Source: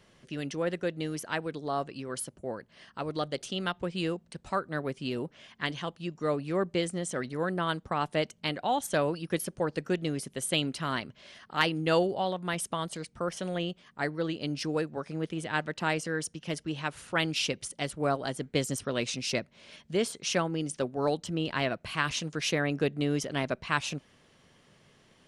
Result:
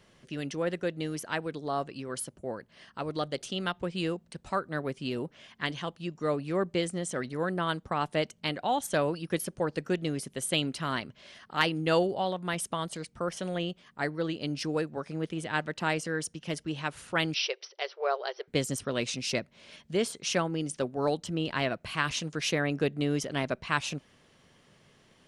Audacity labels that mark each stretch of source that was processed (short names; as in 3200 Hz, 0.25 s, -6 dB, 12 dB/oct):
17.340000	18.480000	brick-wall FIR band-pass 360–6000 Hz